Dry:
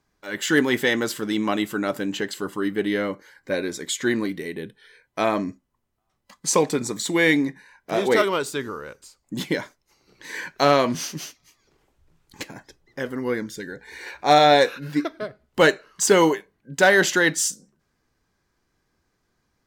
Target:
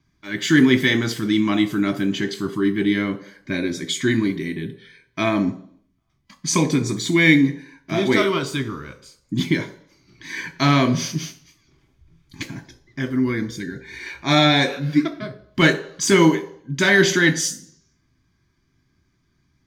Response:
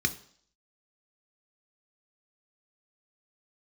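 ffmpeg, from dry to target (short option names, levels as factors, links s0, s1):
-filter_complex "[0:a]asplit=2[s0][s1];[1:a]atrim=start_sample=2205,asetrate=41454,aresample=44100[s2];[s1][s2]afir=irnorm=-1:irlink=0,volume=0.841[s3];[s0][s3]amix=inputs=2:normalize=0,volume=0.596"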